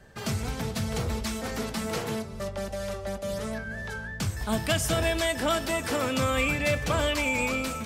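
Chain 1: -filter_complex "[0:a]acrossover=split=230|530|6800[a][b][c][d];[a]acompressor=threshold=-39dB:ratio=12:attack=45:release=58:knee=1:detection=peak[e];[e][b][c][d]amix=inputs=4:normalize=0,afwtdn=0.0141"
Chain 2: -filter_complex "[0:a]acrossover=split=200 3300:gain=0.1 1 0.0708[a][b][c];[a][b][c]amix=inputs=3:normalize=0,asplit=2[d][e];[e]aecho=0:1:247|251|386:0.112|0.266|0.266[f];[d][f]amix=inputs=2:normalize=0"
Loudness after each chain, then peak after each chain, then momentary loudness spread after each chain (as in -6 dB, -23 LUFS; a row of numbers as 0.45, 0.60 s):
-30.0, -30.5 LUFS; -13.0, -13.5 dBFS; 10, 9 LU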